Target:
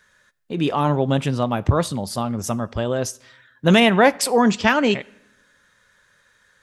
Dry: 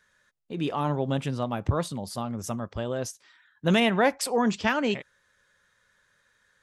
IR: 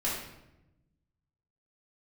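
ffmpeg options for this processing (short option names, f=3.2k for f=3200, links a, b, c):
-filter_complex "[0:a]asplit=2[a][b];[1:a]atrim=start_sample=2205,lowshelf=f=490:g=-9.5[c];[b][c]afir=irnorm=-1:irlink=0,volume=-25.5dB[d];[a][d]amix=inputs=2:normalize=0,volume=7.5dB"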